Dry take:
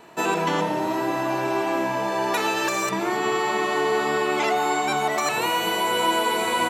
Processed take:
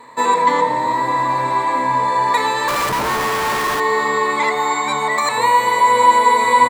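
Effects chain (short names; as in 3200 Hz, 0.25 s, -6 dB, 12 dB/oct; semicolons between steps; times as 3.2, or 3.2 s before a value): ripple EQ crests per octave 1, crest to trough 16 dB; 2.68–3.8 Schmitt trigger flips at -28 dBFS; bell 1200 Hz +7 dB 1.4 oct; feedback echo 0.286 s, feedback 56%, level -18 dB; gain -1 dB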